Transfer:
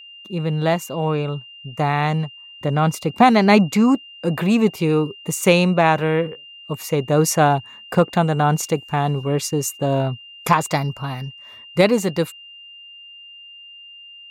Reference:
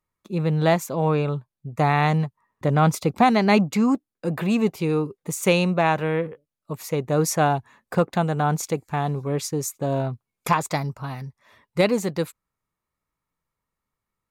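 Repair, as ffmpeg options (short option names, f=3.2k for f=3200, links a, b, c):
-af "bandreject=f=2.8k:w=30,asetnsamples=n=441:p=0,asendcmd='3.2 volume volume -4.5dB',volume=0dB"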